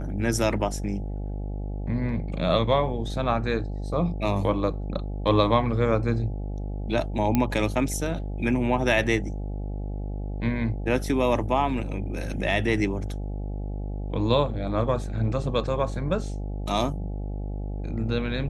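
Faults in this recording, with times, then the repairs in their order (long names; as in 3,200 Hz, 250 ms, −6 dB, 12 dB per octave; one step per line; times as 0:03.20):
mains buzz 50 Hz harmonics 17 −31 dBFS
0:07.35: click −9 dBFS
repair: click removal
hum removal 50 Hz, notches 17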